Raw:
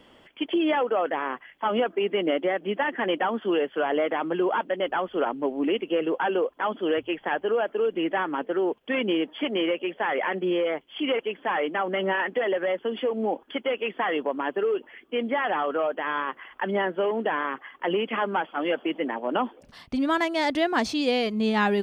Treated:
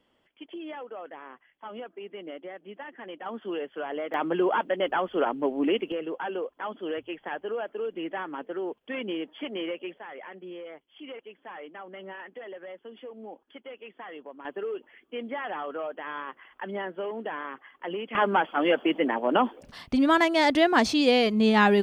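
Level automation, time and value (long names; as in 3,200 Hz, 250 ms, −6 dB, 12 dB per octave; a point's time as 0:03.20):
−15.5 dB
from 0:03.26 −8.5 dB
from 0:04.14 0 dB
from 0:05.92 −7.5 dB
from 0:09.98 −16 dB
from 0:14.45 −8 dB
from 0:18.15 +3 dB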